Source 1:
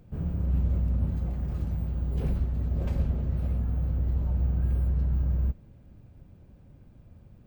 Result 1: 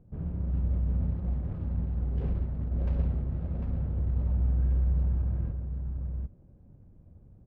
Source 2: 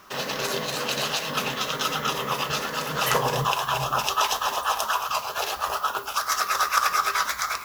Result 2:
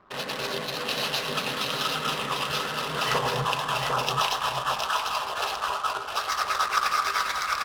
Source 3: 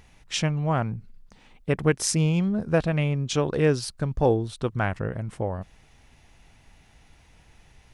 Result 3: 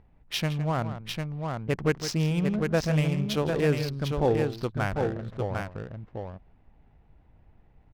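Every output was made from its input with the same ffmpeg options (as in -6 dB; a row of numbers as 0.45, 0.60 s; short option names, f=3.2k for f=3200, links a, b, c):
-af "highshelf=f=7k:t=q:w=1.5:g=-13.5,aecho=1:1:161|750:0.266|0.596,adynamicsmooth=sensitivity=7.5:basefreq=820,volume=-3.5dB"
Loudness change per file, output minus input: -2.0, -1.5, -2.5 LU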